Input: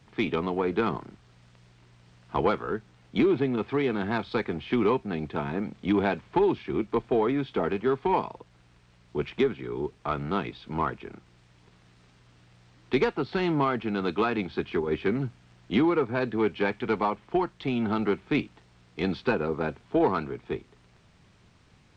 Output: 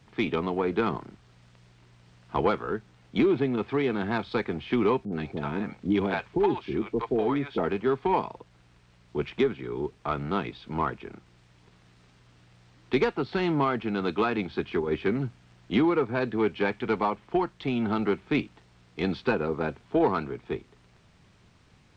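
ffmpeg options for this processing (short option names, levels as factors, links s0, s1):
-filter_complex "[0:a]asettb=1/sr,asplit=3[s0][s1][s2];[s0]atrim=end=5.054[s3];[s1]atrim=start=5.05:end=7.58,asetpts=PTS-STARTPTS,afade=t=in:d=0.004:c=qsin,afade=t=out:st=2.526:d=0.004:c=qsin,acrossover=split=610[s4][s5];[s5]adelay=70[s6];[s4][s6]amix=inputs=2:normalize=0,atrim=end_sample=111573[s7];[s2]atrim=start=7.576[s8];[s3][s7]acrossfade=d=0.004:c1=hsin:c2=qsin[s9];[s9][s8]acrossfade=d=0.004:c1=qsin:c2=hsin"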